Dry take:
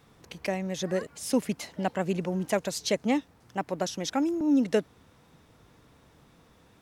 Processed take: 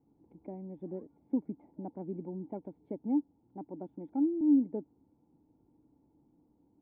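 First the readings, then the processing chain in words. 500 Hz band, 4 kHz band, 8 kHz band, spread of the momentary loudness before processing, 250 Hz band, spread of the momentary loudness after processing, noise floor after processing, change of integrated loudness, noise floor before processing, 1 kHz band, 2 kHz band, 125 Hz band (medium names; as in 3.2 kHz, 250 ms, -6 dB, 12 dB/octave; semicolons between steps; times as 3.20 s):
-12.5 dB, under -40 dB, under -40 dB, 10 LU, -3.0 dB, 18 LU, -71 dBFS, -5.5 dB, -60 dBFS, -15.5 dB, under -35 dB, -11.0 dB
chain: cascade formant filter u; small resonant body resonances 1.4 kHz, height 9 dB; low-pass that closes with the level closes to 1.9 kHz, closed at -28.5 dBFS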